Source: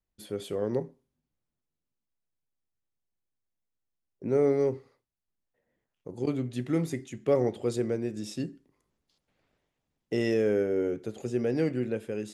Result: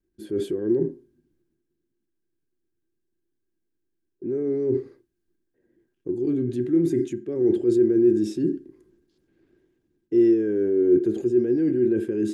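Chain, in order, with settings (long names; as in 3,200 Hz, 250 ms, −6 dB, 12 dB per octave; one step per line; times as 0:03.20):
transient designer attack −4 dB, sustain +5 dB
reversed playback
downward compressor 12 to 1, threshold −34 dBFS, peak gain reduction 14.5 dB
reversed playback
low shelf with overshoot 460 Hz +8.5 dB, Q 1.5
hollow resonant body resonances 350/1,600 Hz, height 18 dB, ringing for 60 ms
level −2 dB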